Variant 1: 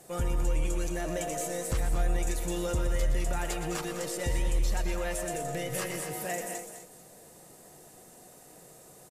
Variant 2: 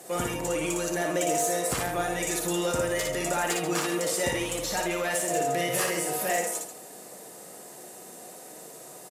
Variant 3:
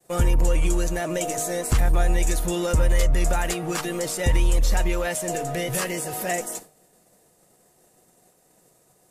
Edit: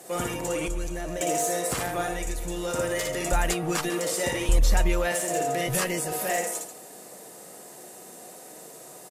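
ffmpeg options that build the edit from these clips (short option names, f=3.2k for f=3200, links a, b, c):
-filter_complex "[0:a]asplit=2[a][b];[2:a]asplit=3[c][d][e];[1:a]asplit=6[f][g][h][i][j][k];[f]atrim=end=0.682[l];[a]atrim=start=0.678:end=1.212[m];[g]atrim=start=1.208:end=2.32[n];[b]atrim=start=2.08:end=2.79[o];[h]atrim=start=2.55:end=3.322[p];[c]atrim=start=3.318:end=3.902[q];[i]atrim=start=3.898:end=4.492[r];[d]atrim=start=4.488:end=5.122[s];[j]atrim=start=5.118:end=5.672[t];[e]atrim=start=5.668:end=6.122[u];[k]atrim=start=6.118[v];[l][m]acrossfade=d=0.004:c1=hsin:c2=hsin[w];[w][n]acrossfade=d=0.004:c1=hsin:c2=hsin[x];[x][o]acrossfade=d=0.24:c1=tri:c2=tri[y];[y][p]acrossfade=d=0.24:c1=tri:c2=tri[z];[z][q]acrossfade=d=0.004:c1=hsin:c2=hsin[aa];[aa][r]acrossfade=d=0.004:c1=hsin:c2=hsin[ab];[ab][s]acrossfade=d=0.004:c1=hsin:c2=hsin[ac];[ac][t]acrossfade=d=0.004:c1=hsin:c2=hsin[ad];[ad][u]acrossfade=d=0.004:c1=hsin:c2=hsin[ae];[ae][v]acrossfade=d=0.004:c1=hsin:c2=hsin"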